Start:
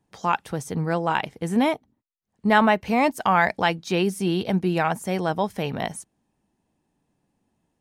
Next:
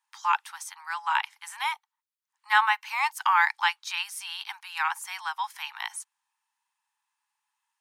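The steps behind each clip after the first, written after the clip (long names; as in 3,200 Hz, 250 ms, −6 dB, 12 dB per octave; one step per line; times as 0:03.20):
Butterworth high-pass 860 Hz 96 dB per octave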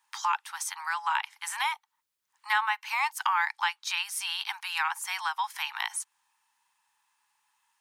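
downward compressor 2.5 to 1, threshold −39 dBFS, peak gain reduction 15.5 dB
level +8.5 dB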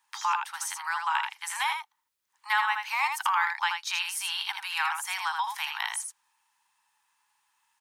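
single-tap delay 80 ms −5.5 dB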